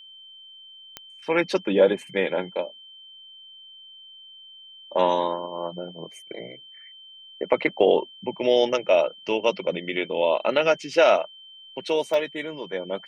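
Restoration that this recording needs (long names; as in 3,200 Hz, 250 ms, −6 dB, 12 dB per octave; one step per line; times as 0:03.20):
click removal
notch filter 3,100 Hz, Q 30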